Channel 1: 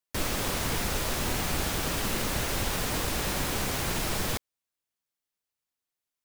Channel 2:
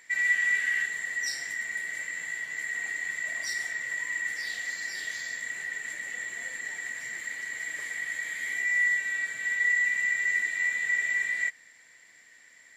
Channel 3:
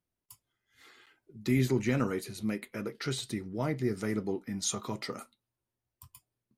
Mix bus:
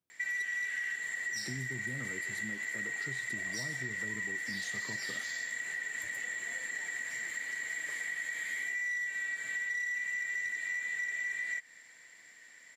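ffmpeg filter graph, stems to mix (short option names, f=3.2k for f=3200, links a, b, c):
-filter_complex "[1:a]adelay=100,volume=-3dB[a];[2:a]acrossover=split=160[b][c];[c]acompressor=threshold=-39dB:ratio=6[d];[b][d]amix=inputs=2:normalize=0,volume=-5.5dB[e];[a][e]amix=inputs=2:normalize=0,aeval=exprs='0.119*(cos(1*acos(clip(val(0)/0.119,-1,1)))-cos(1*PI/2))+0.0266*(cos(2*acos(clip(val(0)/0.119,-1,1)))-cos(2*PI/2))+0.0075*(cos(4*acos(clip(val(0)/0.119,-1,1)))-cos(4*PI/2))+0.0133*(cos(5*acos(clip(val(0)/0.119,-1,1)))-cos(5*PI/2))+0.00299*(cos(7*acos(clip(val(0)/0.119,-1,1)))-cos(7*PI/2))':c=same,acompressor=threshold=-34dB:ratio=6,volume=0dB,highpass=100"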